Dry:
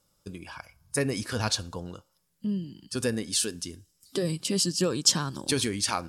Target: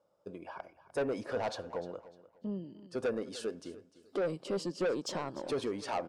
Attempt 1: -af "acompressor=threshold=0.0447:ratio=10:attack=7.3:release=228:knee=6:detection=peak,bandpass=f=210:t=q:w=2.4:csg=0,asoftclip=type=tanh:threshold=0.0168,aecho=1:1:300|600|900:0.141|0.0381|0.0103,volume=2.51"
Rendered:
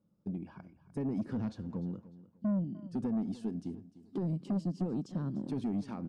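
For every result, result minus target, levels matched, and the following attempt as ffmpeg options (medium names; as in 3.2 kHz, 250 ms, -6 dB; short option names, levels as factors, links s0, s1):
compression: peak gain reduction +13 dB; 500 Hz band -10.5 dB
-af "bandpass=f=210:t=q:w=2.4:csg=0,asoftclip=type=tanh:threshold=0.0168,aecho=1:1:300|600|900:0.141|0.0381|0.0103,volume=2.51"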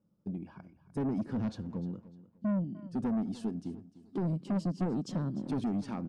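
500 Hz band -10.0 dB
-af "bandpass=f=600:t=q:w=2.4:csg=0,asoftclip=type=tanh:threshold=0.0168,aecho=1:1:300|600|900:0.141|0.0381|0.0103,volume=2.51"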